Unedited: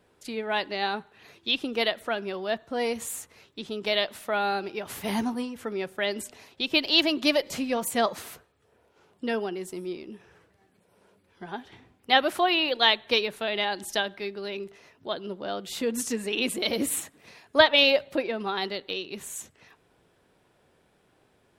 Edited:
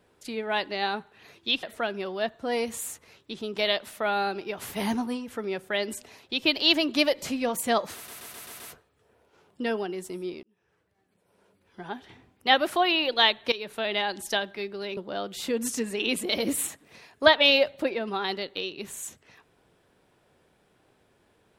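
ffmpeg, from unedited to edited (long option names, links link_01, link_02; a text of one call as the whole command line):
ffmpeg -i in.wav -filter_complex "[0:a]asplit=10[link_01][link_02][link_03][link_04][link_05][link_06][link_07][link_08][link_09][link_10];[link_01]atrim=end=1.632[link_11];[link_02]atrim=start=1.908:end=8.362[link_12];[link_03]atrim=start=8.228:end=8.362[link_13];[link_04]atrim=start=8.228:end=8.362[link_14];[link_05]atrim=start=8.228:end=8.362[link_15];[link_06]atrim=start=8.228:end=8.362[link_16];[link_07]atrim=start=8.228:end=10.06,asetpts=PTS-STARTPTS,afade=type=out:start_time=1.828:duration=0.004:curve=hsin[link_17];[link_08]atrim=start=10.06:end=13.15,asetpts=PTS-STARTPTS,afade=type=in:duration=1.42,afade=type=out:start_time=3.086:duration=0.004:curve=hsin:silence=0.141254[link_18];[link_09]atrim=start=13.15:end=14.602,asetpts=PTS-STARTPTS,afade=type=in:duration=0.27:silence=0.141254[link_19];[link_10]atrim=start=15.298[link_20];[link_11][link_12]acrossfade=duration=0.004:curve1=hsin:curve2=hsin[link_21];[link_21][link_13]acrossfade=duration=0.004:curve1=hsin:curve2=hsin[link_22];[link_22][link_14]acrossfade=duration=0.004:curve1=hsin:curve2=hsin[link_23];[link_23][link_15]acrossfade=duration=0.004:curve1=hsin:curve2=hsin[link_24];[link_24][link_16]acrossfade=duration=0.004:curve1=hsin:curve2=hsin[link_25];[link_17][link_18][link_19]concat=n=3:v=0:a=1[link_26];[link_25][link_26]acrossfade=duration=0.004:curve1=hsin:curve2=hsin[link_27];[link_27][link_20]acrossfade=duration=0.004:curve1=hsin:curve2=hsin" out.wav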